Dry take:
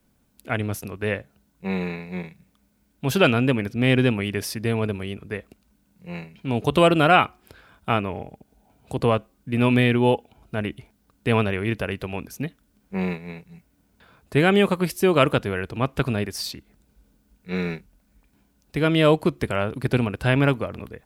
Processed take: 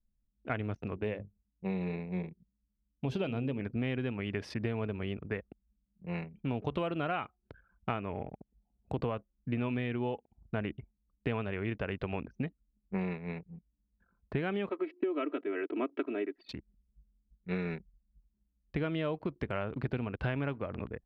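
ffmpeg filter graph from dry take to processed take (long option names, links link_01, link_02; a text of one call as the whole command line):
ffmpeg -i in.wav -filter_complex "[0:a]asettb=1/sr,asplit=3[link_01][link_02][link_03];[link_01]atrim=end=0.944[link_04];[link_02]atrim=start=0.94:end=3.61,asetpts=PTS-STARTPTS,afade=type=in:duration=0.004:curve=qsin,afade=type=out:start_time=2.666:duration=0.004:curve=qsin,equalizer=frequency=1500:width=1.1:gain=-10.5,bandreject=frequency=50:width_type=h:width=6,bandreject=frequency=100:width_type=h:width=6,bandreject=frequency=150:width_type=h:width=6,bandreject=frequency=200:width_type=h:width=6,bandreject=frequency=250:width_type=h:width=6,bandreject=frequency=300:width_type=h:width=6,bandreject=frequency=350:width_type=h:width=6,bandreject=frequency=400:width_type=h:width=6,bandreject=frequency=450:width_type=h:width=6[link_05];[link_03]atrim=start=3.606[link_06];[link_04][link_05]acrossfade=duration=0.004:curve1=hsin:curve2=qsin[link_07];[link_07][link_06]acrossfade=duration=0.004:curve1=qsin:curve2=hsin,asettb=1/sr,asplit=3[link_08][link_09][link_10];[link_08]atrim=end=14.694[link_11];[link_09]atrim=start=14.69:end=16.49,asetpts=PTS-STARTPTS,afade=type=in:duration=0.004:curve=qsin,afade=type=out:start_time=1.796:duration=0.004:curve=qsin,highpass=frequency=290:width=0.5412,highpass=frequency=290:width=1.3066,equalizer=frequency=290:width_type=q:width=4:gain=7,equalizer=frequency=440:width_type=q:width=4:gain=5,equalizer=frequency=620:width_type=q:width=4:gain=-6,equalizer=frequency=950:width_type=q:width=4:gain=-9,equalizer=frequency=1600:width_type=q:width=4:gain=-5,equalizer=frequency=2800:width_type=q:width=4:gain=-3,lowpass=frequency=3000:width=0.5412,lowpass=frequency=3000:width=1.3066,aecho=1:1:3.1:0.97,atrim=end_sample=79380[link_12];[link_10]atrim=start=16.486[link_13];[link_11][link_12]acrossfade=duration=0.004:curve1=hsin:curve2=qsin[link_14];[link_14][link_13]acrossfade=duration=0.004:curve1=qsin:curve2=hsin,lowpass=2800,anlmdn=0.0631,acompressor=threshold=-28dB:ratio=12,volume=-2dB" out.wav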